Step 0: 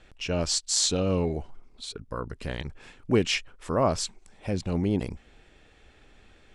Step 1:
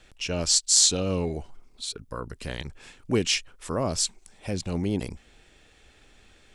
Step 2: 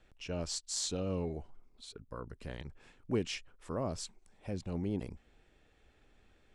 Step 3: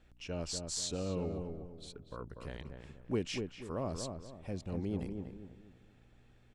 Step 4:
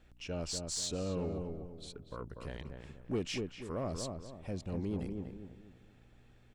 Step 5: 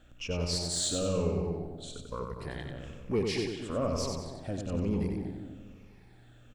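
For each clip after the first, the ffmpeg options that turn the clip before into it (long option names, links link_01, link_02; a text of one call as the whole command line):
ffmpeg -i in.wav -filter_complex "[0:a]highshelf=frequency=4000:gain=11,acrossover=split=500|3000[link_01][link_02][link_03];[link_02]acompressor=threshold=-28dB:ratio=6[link_04];[link_01][link_04][link_03]amix=inputs=3:normalize=0,volume=-1.5dB" out.wav
ffmpeg -i in.wav -af "highshelf=frequency=2500:gain=-11.5,aeval=exprs='0.299*(cos(1*acos(clip(val(0)/0.299,-1,1)))-cos(1*PI/2))+0.00211*(cos(6*acos(clip(val(0)/0.299,-1,1)))-cos(6*PI/2))':channel_layout=same,volume=-8dB" out.wav
ffmpeg -i in.wav -filter_complex "[0:a]aeval=exprs='val(0)+0.000631*(sin(2*PI*60*n/s)+sin(2*PI*2*60*n/s)/2+sin(2*PI*3*60*n/s)/3+sin(2*PI*4*60*n/s)/4+sin(2*PI*5*60*n/s)/5)':channel_layout=same,asplit=2[link_01][link_02];[link_02]adelay=242,lowpass=frequency=1400:poles=1,volume=-5dB,asplit=2[link_03][link_04];[link_04]adelay=242,lowpass=frequency=1400:poles=1,volume=0.37,asplit=2[link_05][link_06];[link_06]adelay=242,lowpass=frequency=1400:poles=1,volume=0.37,asplit=2[link_07][link_08];[link_08]adelay=242,lowpass=frequency=1400:poles=1,volume=0.37,asplit=2[link_09][link_10];[link_10]adelay=242,lowpass=frequency=1400:poles=1,volume=0.37[link_11];[link_01][link_03][link_05][link_07][link_09][link_11]amix=inputs=6:normalize=0,volume=-1.5dB" out.wav
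ffmpeg -i in.wav -af "asoftclip=type=tanh:threshold=-28dB,volume=1.5dB" out.wav
ffmpeg -i in.wav -af "afftfilt=real='re*pow(10,9/40*sin(2*PI*(0.84*log(max(b,1)*sr/1024/100)/log(2)-(-1.1)*(pts-256)/sr)))':imag='im*pow(10,9/40*sin(2*PI*(0.84*log(max(b,1)*sr/1024/100)/log(2)-(-1.1)*(pts-256)/sr)))':win_size=1024:overlap=0.75,aecho=1:1:93|186|279|372|465:0.596|0.232|0.0906|0.0353|0.0138,volume=3.5dB" out.wav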